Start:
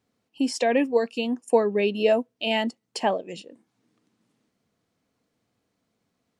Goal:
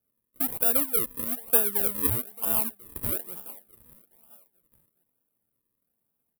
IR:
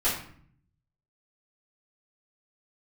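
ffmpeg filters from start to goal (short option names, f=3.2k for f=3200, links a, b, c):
-af "aecho=1:1:421|842|1263|1684:0.0891|0.0508|0.029|0.0165,acrusher=samples=41:mix=1:aa=0.000001:lfo=1:lforange=41:lforate=1.1,aexciter=amount=15.5:drive=7.4:freq=9.3k,volume=-12dB"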